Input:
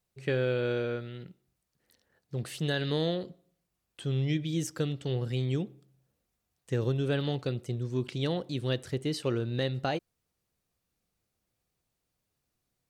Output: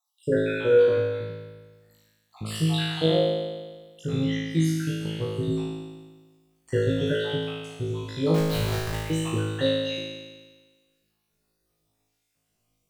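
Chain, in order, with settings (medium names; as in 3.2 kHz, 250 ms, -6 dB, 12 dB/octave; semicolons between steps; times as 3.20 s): random holes in the spectrogram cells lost 61%; 8.34–8.96 s: Schmitt trigger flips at -42 dBFS; flutter echo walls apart 3.2 m, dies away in 1.4 s; trim +3.5 dB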